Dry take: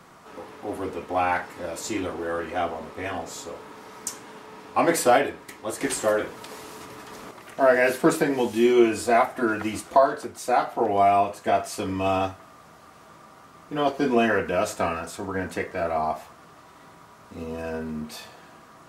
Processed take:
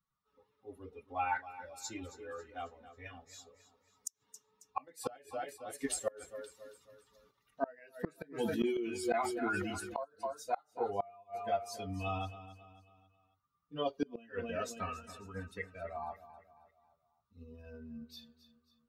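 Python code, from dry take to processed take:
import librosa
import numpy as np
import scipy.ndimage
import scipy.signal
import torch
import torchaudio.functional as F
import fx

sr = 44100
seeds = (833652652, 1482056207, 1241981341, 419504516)

y = fx.bin_expand(x, sr, power=2.0)
y = fx.echo_feedback(y, sr, ms=272, feedback_pct=43, wet_db=-14.5)
y = fx.gate_flip(y, sr, shuts_db=-17.0, range_db=-28)
y = fx.sustainer(y, sr, db_per_s=30.0, at=(8.35, 10.03), fade=0.02)
y = F.gain(torch.from_numpy(y), -4.5).numpy()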